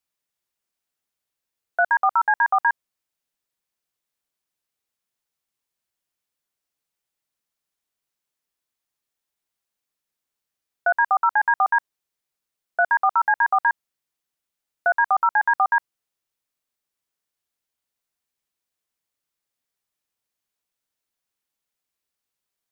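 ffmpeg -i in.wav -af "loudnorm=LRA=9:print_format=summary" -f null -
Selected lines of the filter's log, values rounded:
Input Integrated:    -20.5 LUFS
Input True Peak:     -10.8 dBTP
Input LRA:             3.9 LU
Input Threshold:     -30.8 LUFS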